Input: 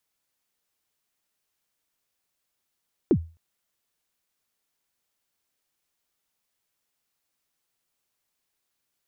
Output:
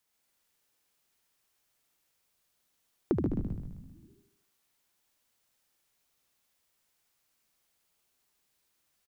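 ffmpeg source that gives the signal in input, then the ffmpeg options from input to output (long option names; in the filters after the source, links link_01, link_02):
-f lavfi -i "aevalsrc='0.251*pow(10,-3*t/0.32)*sin(2*PI*(420*0.068/log(82/420)*(exp(log(82/420)*min(t,0.068)/0.068)-1)+82*max(t-0.068,0)))':duration=0.26:sample_rate=44100"
-filter_complex "[0:a]asplit=2[link_01][link_02];[link_02]asplit=7[link_03][link_04][link_05][link_06][link_07][link_08][link_09];[link_03]adelay=131,afreqshift=-69,volume=-3.5dB[link_10];[link_04]adelay=262,afreqshift=-138,volume=-9.3dB[link_11];[link_05]adelay=393,afreqshift=-207,volume=-15.2dB[link_12];[link_06]adelay=524,afreqshift=-276,volume=-21dB[link_13];[link_07]adelay=655,afreqshift=-345,volume=-26.9dB[link_14];[link_08]adelay=786,afreqshift=-414,volume=-32.7dB[link_15];[link_09]adelay=917,afreqshift=-483,volume=-38.6dB[link_16];[link_10][link_11][link_12][link_13][link_14][link_15][link_16]amix=inputs=7:normalize=0[link_17];[link_01][link_17]amix=inputs=2:normalize=0,acompressor=threshold=-28dB:ratio=3,asplit=2[link_18][link_19];[link_19]aecho=0:1:75|150|225|300|375|450:0.596|0.298|0.149|0.0745|0.0372|0.0186[link_20];[link_18][link_20]amix=inputs=2:normalize=0"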